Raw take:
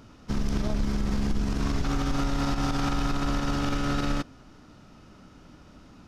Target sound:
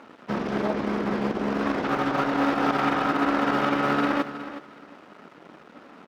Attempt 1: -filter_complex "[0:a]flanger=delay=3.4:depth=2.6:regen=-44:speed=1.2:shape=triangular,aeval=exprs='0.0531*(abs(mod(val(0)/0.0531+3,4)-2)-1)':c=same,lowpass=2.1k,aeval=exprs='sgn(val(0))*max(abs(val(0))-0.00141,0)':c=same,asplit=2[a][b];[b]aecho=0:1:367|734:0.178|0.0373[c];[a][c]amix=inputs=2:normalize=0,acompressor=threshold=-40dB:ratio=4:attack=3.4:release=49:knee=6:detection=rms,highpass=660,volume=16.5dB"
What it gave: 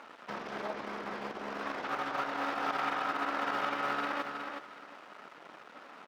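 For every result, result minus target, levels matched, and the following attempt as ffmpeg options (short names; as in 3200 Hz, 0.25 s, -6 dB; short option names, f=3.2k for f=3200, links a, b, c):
250 Hz band -8.0 dB; compressor: peak gain reduction +7.5 dB
-filter_complex "[0:a]flanger=delay=3.4:depth=2.6:regen=-44:speed=1.2:shape=triangular,aeval=exprs='0.0531*(abs(mod(val(0)/0.0531+3,4)-2)-1)':c=same,lowpass=2.1k,aeval=exprs='sgn(val(0))*max(abs(val(0))-0.00141,0)':c=same,asplit=2[a][b];[b]aecho=0:1:367|734:0.178|0.0373[c];[a][c]amix=inputs=2:normalize=0,acompressor=threshold=-40dB:ratio=4:attack=3.4:release=49:knee=6:detection=rms,highpass=310,volume=16.5dB"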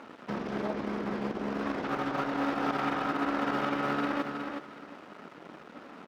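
compressor: peak gain reduction +7.5 dB
-filter_complex "[0:a]flanger=delay=3.4:depth=2.6:regen=-44:speed=1.2:shape=triangular,aeval=exprs='0.0531*(abs(mod(val(0)/0.0531+3,4)-2)-1)':c=same,lowpass=2.1k,aeval=exprs='sgn(val(0))*max(abs(val(0))-0.00141,0)':c=same,asplit=2[a][b];[b]aecho=0:1:367|734:0.178|0.0373[c];[a][c]amix=inputs=2:normalize=0,acompressor=threshold=-29.5dB:ratio=4:attack=3.4:release=49:knee=6:detection=rms,highpass=310,volume=16.5dB"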